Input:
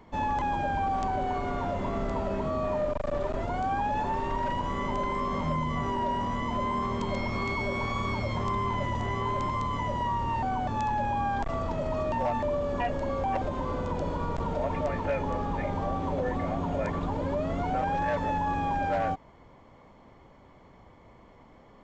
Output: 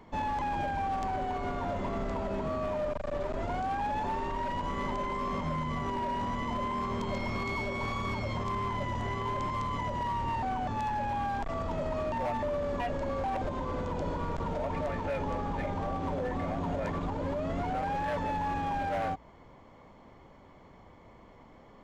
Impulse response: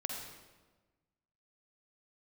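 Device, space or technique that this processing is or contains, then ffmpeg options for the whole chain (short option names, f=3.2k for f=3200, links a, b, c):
limiter into clipper: -af "bandreject=f=60:t=h:w=6,bandreject=f=120:t=h:w=6,alimiter=limit=-23.5dB:level=0:latency=1:release=131,asoftclip=type=hard:threshold=-27.5dB"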